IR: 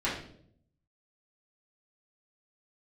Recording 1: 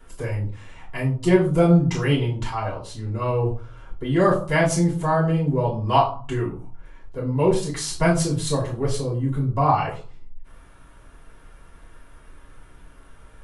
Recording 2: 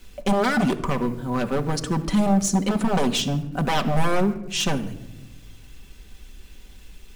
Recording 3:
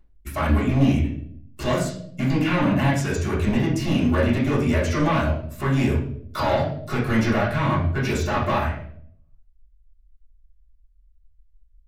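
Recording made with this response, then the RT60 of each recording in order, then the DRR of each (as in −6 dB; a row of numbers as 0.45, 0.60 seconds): 3; 0.40 s, non-exponential decay, 0.65 s; −7.5, 4.5, −9.5 decibels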